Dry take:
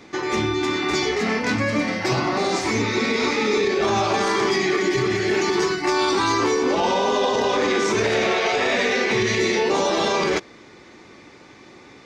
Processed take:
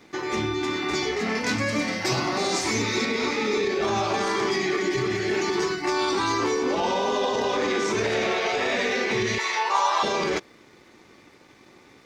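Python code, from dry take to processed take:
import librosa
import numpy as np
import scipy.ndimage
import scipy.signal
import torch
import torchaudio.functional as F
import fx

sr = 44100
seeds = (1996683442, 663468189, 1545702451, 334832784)

y = fx.high_shelf(x, sr, hz=4400.0, db=10.0, at=(1.35, 3.05))
y = np.sign(y) * np.maximum(np.abs(y) - 10.0 ** (-55.0 / 20.0), 0.0)
y = fx.highpass_res(y, sr, hz=1000.0, q=4.1, at=(9.38, 10.03))
y = F.gain(torch.from_numpy(y), -4.0).numpy()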